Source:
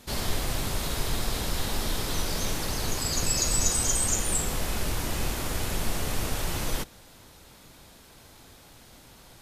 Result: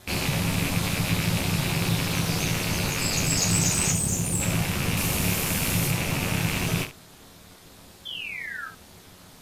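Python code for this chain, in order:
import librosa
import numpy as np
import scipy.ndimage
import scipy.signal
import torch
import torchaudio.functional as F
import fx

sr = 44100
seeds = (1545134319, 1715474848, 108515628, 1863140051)

p1 = fx.rattle_buzz(x, sr, strikes_db=-42.0, level_db=-20.0)
p2 = fx.high_shelf(p1, sr, hz=6400.0, db=9.0, at=(4.97, 5.91))
p3 = fx.spec_paint(p2, sr, seeds[0], shape='fall', start_s=8.05, length_s=0.63, low_hz=1400.0, high_hz=3400.0, level_db=-37.0)
p4 = p3 * np.sin(2.0 * np.pi * 140.0 * np.arange(len(p3)) / sr)
p5 = np.clip(p4, -10.0 ** (-25.5 / 20.0), 10.0 ** (-25.5 / 20.0))
p6 = p4 + (p5 * librosa.db_to_amplitude(-6.5))
p7 = fx.peak_eq(p6, sr, hz=2000.0, db=-10.0, octaves=2.6, at=(3.91, 4.4), fade=0.02)
y = p7 + fx.room_early_taps(p7, sr, ms=(11, 29, 72), db=(-4.5, -7.0, -11.0), dry=0)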